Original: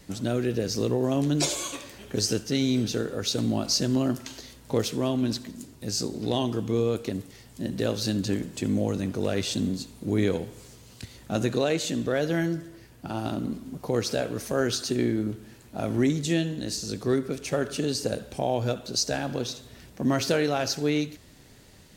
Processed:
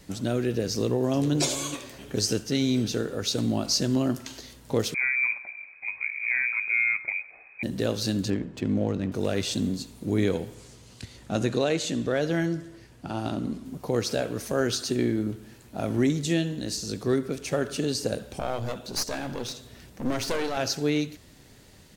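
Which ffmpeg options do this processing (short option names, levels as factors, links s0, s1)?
-filter_complex "[0:a]asplit=2[s0][s1];[s1]afade=t=in:st=0.72:d=0.01,afade=t=out:st=1.33:d=0.01,aecho=0:1:410|820|1230:0.211349|0.0528372|0.0132093[s2];[s0][s2]amix=inputs=2:normalize=0,asettb=1/sr,asplit=3[s3][s4][s5];[s3]atrim=end=4.944[s6];[s4]atrim=start=4.94:end=7.63,asetpts=PTS-STARTPTS,afade=t=in:d=0.004:c=qsin,afade=t=out:st=2.686:d=0.004:c=qsin,lowpass=f=2200:t=q:w=0.5098,lowpass=f=2200:t=q:w=0.6013,lowpass=f=2200:t=q:w=0.9,lowpass=f=2200:t=q:w=2.563,afreqshift=-2600[s7];[s5]atrim=start=7.626[s8];[s6][s7]acrossfade=d=0.004:c1=hsin:c2=qsin[s9];[s9][s8]acrossfade=d=0.004:c1=qsin:c2=hsin,asettb=1/sr,asplit=3[s10][s11][s12];[s10]atrim=end=8.304[s13];[s11]atrim=start=8.3:end=9.12,asetpts=PTS-STARTPTS,afade=t=in:d=0.004:c=qsin,afade=t=out:st=0.816:d=0.004:c=qsin,adynamicsmooth=sensitivity=5.5:basefreq=2000[s14];[s12]atrim=start=9.116[s15];[s13][s14]acrossfade=d=0.004:c1=hsin:c2=qsin[s16];[s16][s15]acrossfade=d=0.004:c1=qsin:c2=hsin,asettb=1/sr,asplit=3[s17][s18][s19];[s17]atrim=end=10.544[s20];[s18]atrim=start=10.54:end=13.65,asetpts=PTS-STARTPTS,afade=t=in:d=0.004:c=qsin,afade=t=out:st=3.106:d=0.004:c=qsin,lowpass=10000[s21];[s19]atrim=start=13.646[s22];[s20][s21]acrossfade=d=0.004:c1=hsin:c2=qsin[s23];[s23][s22]acrossfade=d=0.004:c1=qsin:c2=hsin,asettb=1/sr,asplit=3[s24][s25][s26];[s24]atrim=end=18.394[s27];[s25]atrim=start=18.39:end=20.57,asetpts=PTS-STARTPTS,afade=t=in:d=0.004:c=qsin,afade=t=out:st=2.176:d=0.004:c=qsin,aeval=exprs='clip(val(0),-1,0.02)':c=same[s28];[s26]atrim=start=20.566[s29];[s27][s28]acrossfade=d=0.004:c1=hsin:c2=qsin[s30];[s30][s29]acrossfade=d=0.004:c1=qsin:c2=hsin"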